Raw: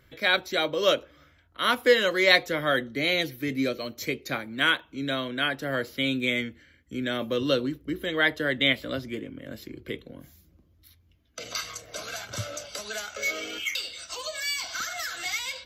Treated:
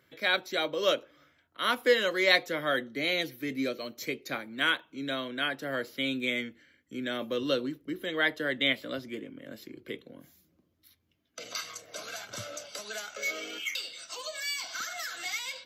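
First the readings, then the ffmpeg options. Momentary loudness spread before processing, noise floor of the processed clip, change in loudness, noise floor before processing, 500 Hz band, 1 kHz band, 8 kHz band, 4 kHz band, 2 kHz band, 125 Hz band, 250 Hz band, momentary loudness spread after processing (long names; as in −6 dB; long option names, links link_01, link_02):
16 LU, −72 dBFS, −4.0 dB, −62 dBFS, −4.0 dB, −4.0 dB, −4.0 dB, −4.0 dB, −4.0 dB, −9.5 dB, −4.5 dB, 16 LU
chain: -af "highpass=170,volume=-4dB"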